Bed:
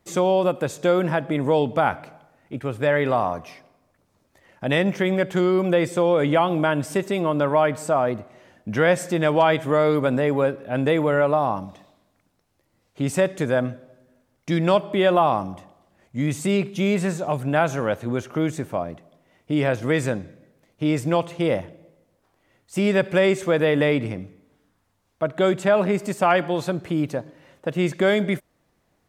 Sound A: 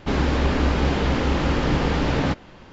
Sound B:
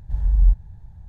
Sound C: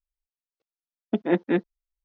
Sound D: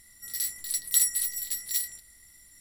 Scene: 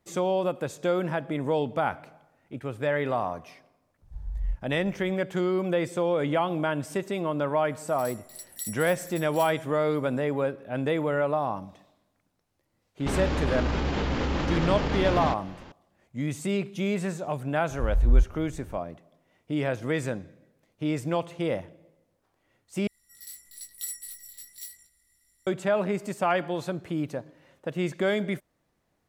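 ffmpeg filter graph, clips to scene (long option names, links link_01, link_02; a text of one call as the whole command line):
ffmpeg -i bed.wav -i cue0.wav -i cue1.wav -i cue2.wav -i cue3.wav -filter_complex "[2:a]asplit=2[link_01][link_02];[4:a]asplit=2[link_03][link_04];[0:a]volume=-6.5dB[link_05];[1:a]alimiter=level_in=16.5dB:limit=-1dB:release=50:level=0:latency=1[link_06];[link_04]flanger=delay=18:depth=3:speed=0.99[link_07];[link_05]asplit=2[link_08][link_09];[link_08]atrim=end=22.874[link_10];[link_07]atrim=end=2.6,asetpts=PTS-STARTPTS,volume=-9.5dB[link_11];[link_09]atrim=start=25.466[link_12];[link_01]atrim=end=1.08,asetpts=PTS-STARTPTS,volume=-14.5dB,afade=type=in:duration=0.004:curve=hsin,afade=type=out:start_time=1.076:duration=0.004:curve=hsin,adelay=4020[link_13];[link_03]atrim=end=2.6,asetpts=PTS-STARTPTS,volume=-13.5dB,afade=type=in:duration=0.004:curve=hsin,afade=type=out:start_time=2.596:duration=0.004:curve=hsin,adelay=7650[link_14];[link_06]atrim=end=2.72,asetpts=PTS-STARTPTS,volume=-18dB,afade=type=in:duration=0.004:curve=hsin,afade=type=out:start_time=2.716:duration=0.004:curve=hsin,adelay=573300S[link_15];[link_02]atrim=end=1.08,asetpts=PTS-STARTPTS,volume=-3.5dB,afade=type=in:duration=0.004:curve=hsin,afade=type=out:start_time=1.076:duration=0.004:curve=hsin,adelay=17700[link_16];[link_10][link_11]acrossfade=duration=0.004:curve1=hsin:curve2=hsin[link_17];[link_17][link_12]acrossfade=duration=0.004:curve1=hsin:curve2=hsin[link_18];[link_18][link_13][link_14][link_15][link_16]amix=inputs=5:normalize=0" out.wav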